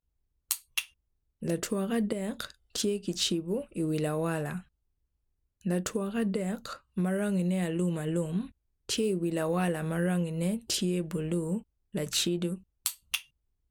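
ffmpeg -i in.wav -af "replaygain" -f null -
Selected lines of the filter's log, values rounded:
track_gain = +12.8 dB
track_peak = 0.174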